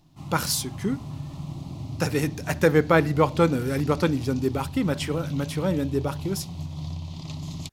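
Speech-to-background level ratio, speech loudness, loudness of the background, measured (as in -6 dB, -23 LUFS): 11.0 dB, -25.0 LUFS, -36.0 LUFS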